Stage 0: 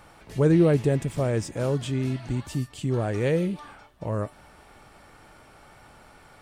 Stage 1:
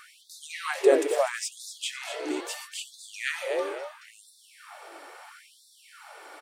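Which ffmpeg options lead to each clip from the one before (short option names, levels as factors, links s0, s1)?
-filter_complex "[0:a]asplit=5[s0][s1][s2][s3][s4];[s1]adelay=248,afreqshift=43,volume=0.316[s5];[s2]adelay=496,afreqshift=86,volume=0.107[s6];[s3]adelay=744,afreqshift=129,volume=0.0367[s7];[s4]adelay=992,afreqshift=172,volume=0.0124[s8];[s0][s5][s6][s7][s8]amix=inputs=5:normalize=0,afftfilt=real='re*gte(b*sr/1024,280*pow(3500/280,0.5+0.5*sin(2*PI*0.75*pts/sr)))':imag='im*gte(b*sr/1024,280*pow(3500/280,0.5+0.5*sin(2*PI*0.75*pts/sr)))':win_size=1024:overlap=0.75,volume=2"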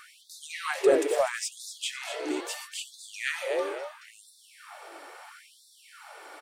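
-af "asoftclip=type=tanh:threshold=0.266"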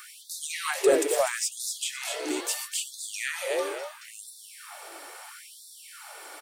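-filter_complex "[0:a]acrossover=split=1600[s0][s1];[s1]alimiter=level_in=1.33:limit=0.0631:level=0:latency=1:release=231,volume=0.75[s2];[s0][s2]amix=inputs=2:normalize=0,crystalizer=i=2.5:c=0"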